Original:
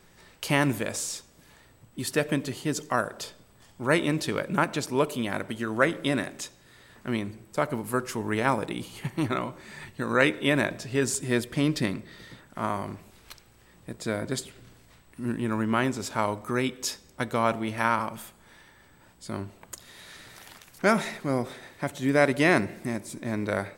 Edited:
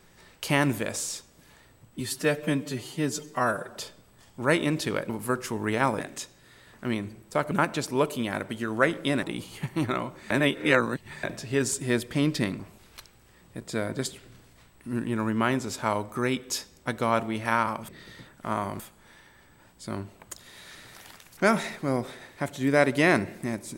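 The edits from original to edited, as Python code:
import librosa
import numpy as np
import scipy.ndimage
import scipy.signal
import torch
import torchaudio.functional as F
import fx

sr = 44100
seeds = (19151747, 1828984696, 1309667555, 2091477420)

y = fx.edit(x, sr, fx.stretch_span(start_s=2.0, length_s=1.17, factor=1.5),
    fx.swap(start_s=4.51, length_s=1.71, other_s=7.74, other_length_s=0.9),
    fx.reverse_span(start_s=9.72, length_s=0.93),
    fx.move(start_s=12.01, length_s=0.91, to_s=18.21), tone=tone)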